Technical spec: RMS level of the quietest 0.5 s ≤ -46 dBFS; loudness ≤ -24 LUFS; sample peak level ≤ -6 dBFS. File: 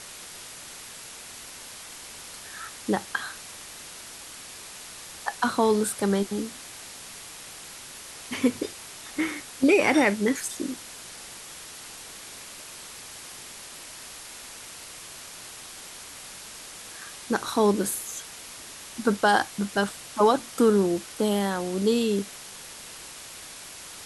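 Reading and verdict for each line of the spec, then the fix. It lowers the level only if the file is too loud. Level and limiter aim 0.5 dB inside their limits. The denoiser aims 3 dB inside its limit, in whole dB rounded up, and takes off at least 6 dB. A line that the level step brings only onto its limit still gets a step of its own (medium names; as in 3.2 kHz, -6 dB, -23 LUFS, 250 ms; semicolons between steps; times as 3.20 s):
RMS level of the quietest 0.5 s -43 dBFS: fail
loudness -25.5 LUFS: pass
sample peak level -7.5 dBFS: pass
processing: noise reduction 6 dB, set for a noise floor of -43 dBFS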